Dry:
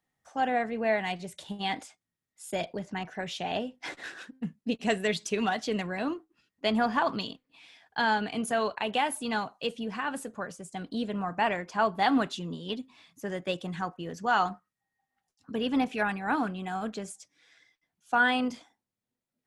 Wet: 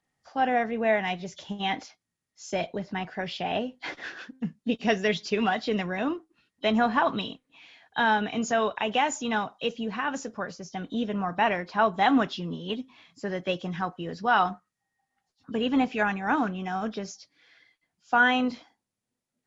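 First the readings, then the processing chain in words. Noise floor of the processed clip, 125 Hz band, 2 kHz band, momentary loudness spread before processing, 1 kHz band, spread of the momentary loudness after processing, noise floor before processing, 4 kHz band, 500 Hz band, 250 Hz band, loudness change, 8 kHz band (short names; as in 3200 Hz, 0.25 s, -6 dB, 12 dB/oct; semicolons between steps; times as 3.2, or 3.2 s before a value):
-85 dBFS, +3.0 dB, +3.0 dB, 13 LU, +3.0 dB, 13 LU, under -85 dBFS, +2.0 dB, +3.0 dB, +3.0 dB, +3.0 dB, +1.0 dB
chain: nonlinear frequency compression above 3000 Hz 1.5:1; gain +3 dB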